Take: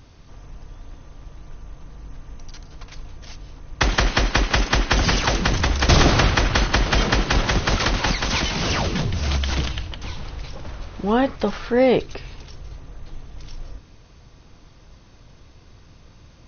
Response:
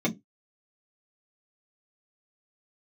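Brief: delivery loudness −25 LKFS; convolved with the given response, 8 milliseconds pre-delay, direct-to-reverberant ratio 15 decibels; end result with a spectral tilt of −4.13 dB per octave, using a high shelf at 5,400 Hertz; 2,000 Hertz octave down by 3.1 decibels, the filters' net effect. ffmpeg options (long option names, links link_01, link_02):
-filter_complex "[0:a]equalizer=frequency=2000:width_type=o:gain=-5,highshelf=frequency=5400:gain=7.5,asplit=2[link_01][link_02];[1:a]atrim=start_sample=2205,adelay=8[link_03];[link_02][link_03]afir=irnorm=-1:irlink=0,volume=-24.5dB[link_04];[link_01][link_04]amix=inputs=2:normalize=0,volume=-5dB"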